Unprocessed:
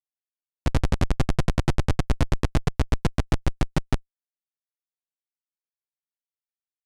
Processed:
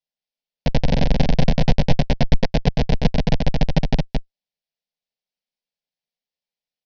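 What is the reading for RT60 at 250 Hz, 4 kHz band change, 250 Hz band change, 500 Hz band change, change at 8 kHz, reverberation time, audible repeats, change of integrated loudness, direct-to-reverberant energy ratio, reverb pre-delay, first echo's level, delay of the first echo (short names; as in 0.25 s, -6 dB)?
none, +8.0 dB, +7.0 dB, +7.5 dB, -2.0 dB, none, 1, +5.0 dB, none, none, -3.5 dB, 0.221 s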